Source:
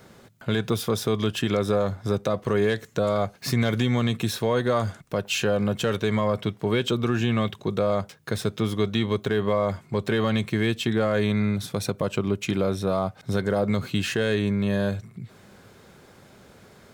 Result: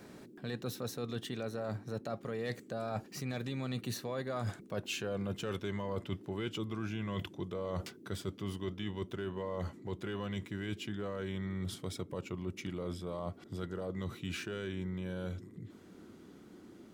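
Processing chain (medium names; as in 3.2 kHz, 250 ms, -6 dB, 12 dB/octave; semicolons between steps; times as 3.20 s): Doppler pass-by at 4.93 s, 31 m/s, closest 24 m; reverse; compression 10:1, threshold -47 dBFS, peak gain reduction 27 dB; reverse; band noise 180–390 Hz -67 dBFS; trim +12 dB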